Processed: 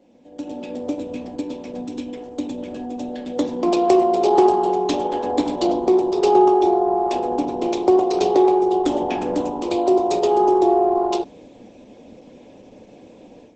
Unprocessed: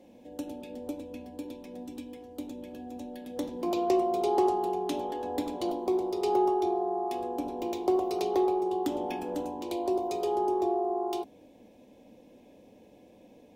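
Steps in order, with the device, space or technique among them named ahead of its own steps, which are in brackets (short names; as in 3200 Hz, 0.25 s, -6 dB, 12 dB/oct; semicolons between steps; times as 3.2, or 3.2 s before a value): video call (HPF 110 Hz 12 dB/oct; AGC gain up to 12.5 dB; Opus 12 kbps 48000 Hz)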